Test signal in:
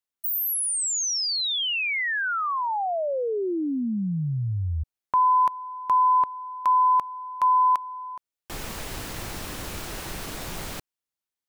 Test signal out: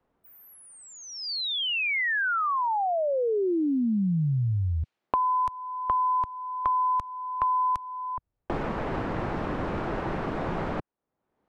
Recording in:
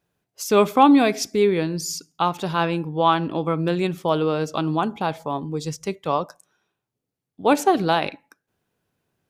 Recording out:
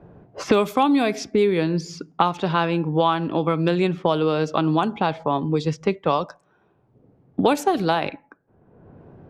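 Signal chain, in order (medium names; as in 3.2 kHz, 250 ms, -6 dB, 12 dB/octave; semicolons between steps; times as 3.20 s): level-controlled noise filter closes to 740 Hz, open at -15 dBFS; three bands compressed up and down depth 100%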